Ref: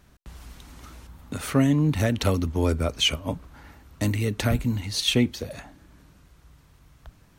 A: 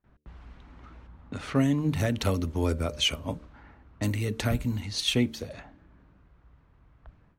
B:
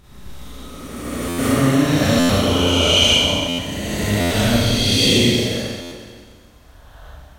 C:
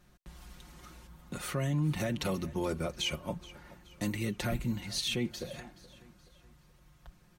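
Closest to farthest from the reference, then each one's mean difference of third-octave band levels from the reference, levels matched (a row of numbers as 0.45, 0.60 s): A, C, B; 2.0, 4.5, 10.5 dB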